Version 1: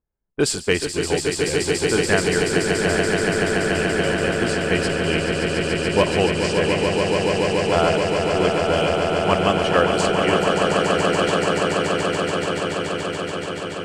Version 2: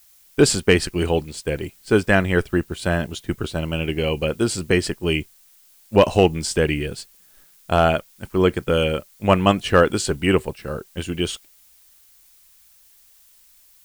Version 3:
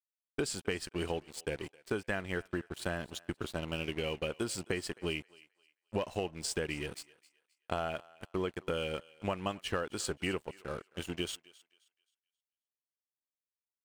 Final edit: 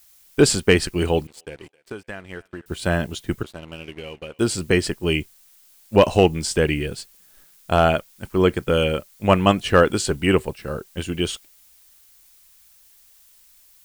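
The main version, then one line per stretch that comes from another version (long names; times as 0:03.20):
2
0:01.27–0:02.66: punch in from 3
0:03.43–0:04.39: punch in from 3
not used: 1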